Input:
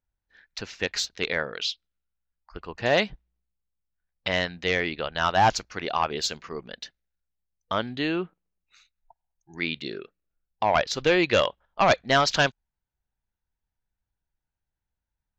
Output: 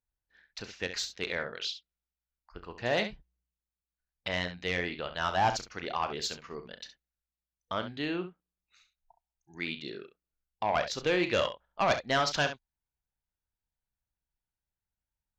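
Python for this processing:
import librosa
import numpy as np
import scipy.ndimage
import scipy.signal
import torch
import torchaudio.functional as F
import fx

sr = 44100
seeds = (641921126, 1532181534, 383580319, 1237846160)

y = fx.room_early_taps(x, sr, ms=(34, 67), db=(-12.5, -11.0))
y = fx.cheby_harmonics(y, sr, harmonics=(5,), levels_db=(-34,), full_scale_db=-9.0)
y = y * librosa.db_to_amplitude(-7.5)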